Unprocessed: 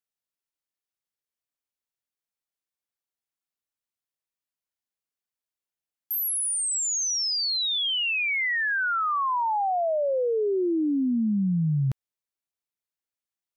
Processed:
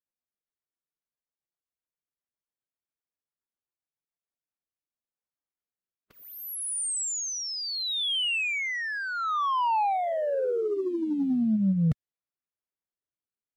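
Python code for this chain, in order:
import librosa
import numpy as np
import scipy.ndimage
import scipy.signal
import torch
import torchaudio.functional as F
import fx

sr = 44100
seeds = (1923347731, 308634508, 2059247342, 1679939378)

y = fx.pitch_keep_formants(x, sr, semitones=3.5)
y = fx.high_shelf(y, sr, hz=3800.0, db=-6.0)
y = fx.leveller(y, sr, passes=1)
y = fx.rider(y, sr, range_db=3, speed_s=0.5)
y = fx.env_lowpass(y, sr, base_hz=1700.0, full_db=-24.0)
y = fx.rotary_switch(y, sr, hz=7.5, then_hz=0.7, switch_at_s=3.91)
y = y * 10.0 ** (1.0 / 20.0)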